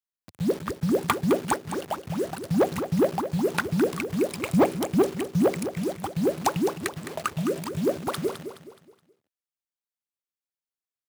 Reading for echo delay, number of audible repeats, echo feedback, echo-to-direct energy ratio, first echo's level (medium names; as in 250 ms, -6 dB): 211 ms, 3, 37%, -9.5 dB, -10.0 dB